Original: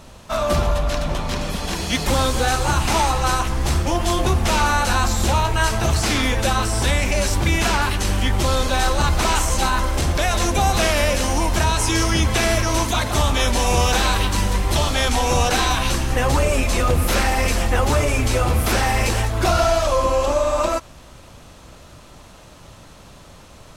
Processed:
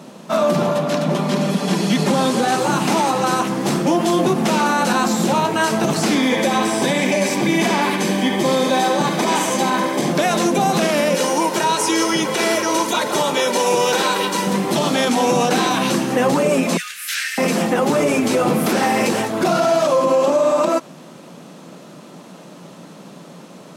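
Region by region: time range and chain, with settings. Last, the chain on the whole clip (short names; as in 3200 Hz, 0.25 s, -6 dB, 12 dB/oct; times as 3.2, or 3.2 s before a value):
1.1–2.59 CVSD 64 kbps + comb 5 ms, depth 36%
6.15–10.1 notch comb 1400 Hz + narrowing echo 70 ms, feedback 74%, band-pass 2300 Hz, level -4 dB
11.14–14.47 low shelf 210 Hz -11.5 dB + comb 2.1 ms, depth 48%
16.77–17.38 elliptic high-pass 1600 Hz, stop band 50 dB + doubler 13 ms -12 dB
whole clip: elliptic high-pass 170 Hz, stop band 60 dB; low shelf 490 Hz +12 dB; limiter -9.5 dBFS; gain +1.5 dB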